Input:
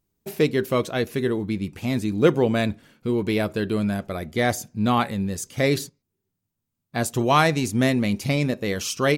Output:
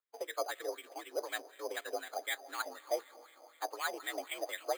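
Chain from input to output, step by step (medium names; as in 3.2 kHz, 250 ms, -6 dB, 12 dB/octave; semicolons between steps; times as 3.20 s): peak limiter -14 dBFS, peak gain reduction 10.5 dB; time stretch by phase-locked vocoder 0.52×; mistuned SSB +66 Hz 280–2900 Hz; on a send at -16 dB: reverberation RT60 3.8 s, pre-delay 115 ms; on the sum: wah-wah 4 Hz 670–2100 Hz, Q 4.2; careless resampling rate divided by 8×, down none, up hold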